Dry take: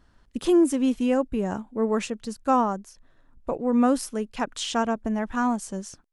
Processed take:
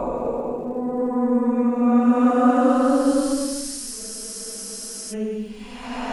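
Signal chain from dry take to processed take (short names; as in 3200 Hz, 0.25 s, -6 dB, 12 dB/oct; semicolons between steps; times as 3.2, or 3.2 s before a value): Paulstretch 7×, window 0.25 s, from 3.5; crackle 270/s -54 dBFS; spectral freeze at 4.02, 1.11 s; gain +3 dB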